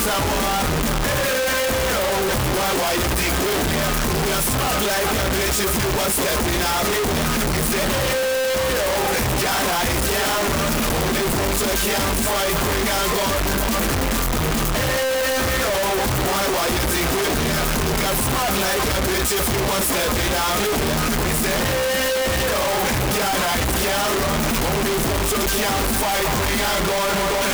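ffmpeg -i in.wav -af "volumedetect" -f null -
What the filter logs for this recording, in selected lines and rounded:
mean_volume: -20.1 dB
max_volume: -20.1 dB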